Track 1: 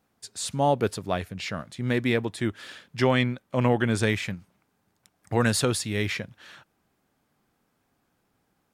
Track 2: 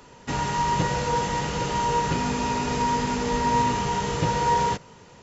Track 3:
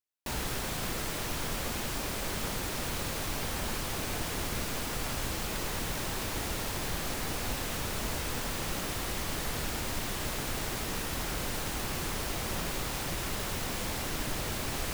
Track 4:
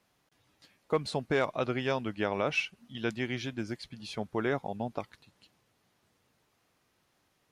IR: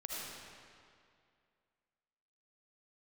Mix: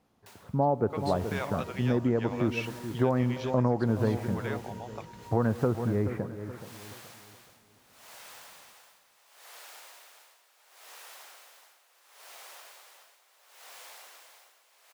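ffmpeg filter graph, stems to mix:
-filter_complex "[0:a]lowpass=f=1.2k:w=0.5412,lowpass=f=1.2k:w=1.3066,volume=2dB,asplit=3[a][b][c];[b]volume=-17dB[d];[c]volume=-12.5dB[e];[1:a]flanger=delay=17:depth=2:speed=0.87,adelay=800,volume=-16.5dB[f];[2:a]highpass=f=590:w=0.5412,highpass=f=590:w=1.3066,aeval=exprs='val(0)*pow(10,-32*(0.5-0.5*cos(2*PI*0.72*n/s))/20)':c=same,volume=-3.5dB,asplit=2[g][h];[h]volume=-16dB[i];[3:a]highpass=580,volume=-4dB[j];[f][g]amix=inputs=2:normalize=0,acompressor=threshold=-47dB:ratio=4,volume=0dB[k];[4:a]atrim=start_sample=2205[l];[d][l]afir=irnorm=-1:irlink=0[m];[e][i]amix=inputs=2:normalize=0,aecho=0:1:425|850|1275|1700|2125:1|0.32|0.102|0.0328|0.0105[n];[a][j][k][m][n]amix=inputs=5:normalize=0,acompressor=threshold=-23dB:ratio=3"

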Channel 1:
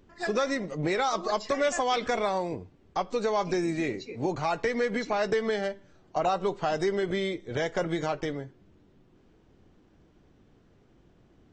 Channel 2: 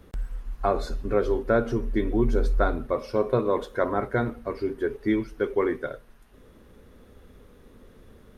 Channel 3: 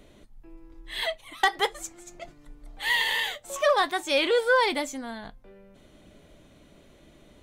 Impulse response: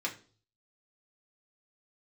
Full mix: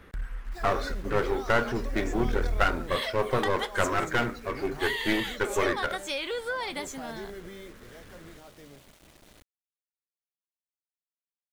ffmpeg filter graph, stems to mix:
-filter_complex "[0:a]alimiter=level_in=1.5dB:limit=-24dB:level=0:latency=1:release=94,volume=-1.5dB,adelay=350,volume=-7.5dB,afade=t=out:st=7.26:d=0.6:silence=0.398107[a];[1:a]equalizer=f=1.8k:w=0.82:g=12.5,aeval=exprs='clip(val(0),-1,0.0473)':c=same,volume=-2.5dB[b];[2:a]equalizer=f=340:t=o:w=2.6:g=-4,adelay=2000,volume=-1dB[c];[a][c]amix=inputs=2:normalize=0,acrusher=bits=8:mix=0:aa=0.000001,acompressor=threshold=-29dB:ratio=6,volume=0dB[d];[b][d]amix=inputs=2:normalize=0"

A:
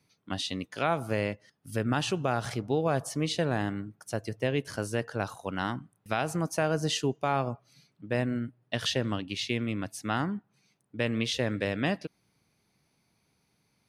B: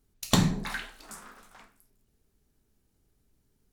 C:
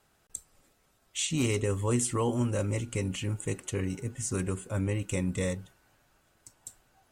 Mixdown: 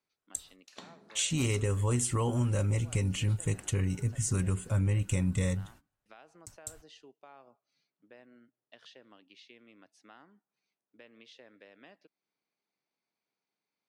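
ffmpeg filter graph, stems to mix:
-filter_complex "[0:a]volume=-15dB[a];[1:a]adelay=450,volume=-7.5dB[b];[2:a]agate=range=-27dB:threshold=-57dB:ratio=16:detection=peak,asubboost=boost=6:cutoff=140,volume=2.5dB[c];[a][b]amix=inputs=2:normalize=0,highpass=290,lowpass=5.2k,acompressor=threshold=-58dB:ratio=2,volume=0dB[d];[c][d]amix=inputs=2:normalize=0,lowshelf=f=110:g=-8.5,acompressor=threshold=-28dB:ratio=2"

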